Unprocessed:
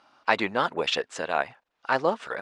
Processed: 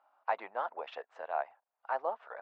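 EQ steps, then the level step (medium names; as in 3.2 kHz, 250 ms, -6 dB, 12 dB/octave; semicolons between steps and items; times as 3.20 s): ladder band-pass 850 Hz, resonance 45%; 0.0 dB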